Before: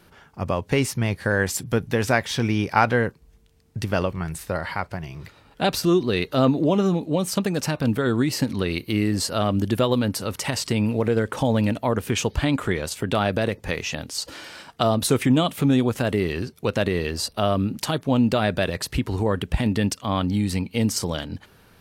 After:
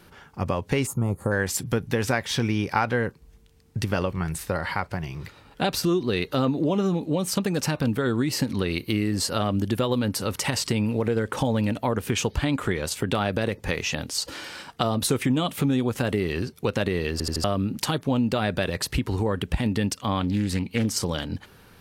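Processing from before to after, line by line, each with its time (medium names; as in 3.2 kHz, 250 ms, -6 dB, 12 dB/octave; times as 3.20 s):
0.86–1.32 s: time-frequency box 1.4–6.4 kHz -20 dB
17.12 s: stutter in place 0.08 s, 4 plays
20.20–21.10 s: loudspeaker Doppler distortion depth 0.36 ms
whole clip: band-stop 650 Hz, Q 12; compression 2.5:1, threshold -24 dBFS; trim +2 dB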